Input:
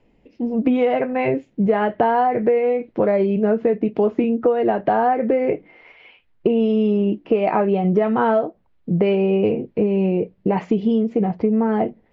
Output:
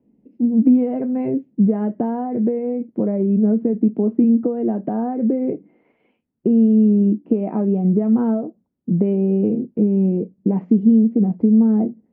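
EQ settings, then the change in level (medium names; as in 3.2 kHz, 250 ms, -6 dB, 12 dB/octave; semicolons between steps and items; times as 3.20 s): band-pass filter 230 Hz, Q 2.7; +6.5 dB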